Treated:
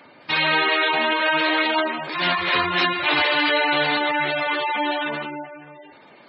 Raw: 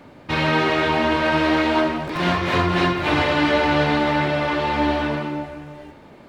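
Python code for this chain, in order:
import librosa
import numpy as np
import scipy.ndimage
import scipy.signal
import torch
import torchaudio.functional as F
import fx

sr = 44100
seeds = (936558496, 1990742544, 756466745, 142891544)

y = fx.tilt_eq(x, sr, slope=4.0)
y = fx.mod_noise(y, sr, seeds[0], snr_db=17)
y = fx.spec_gate(y, sr, threshold_db=-15, keep='strong')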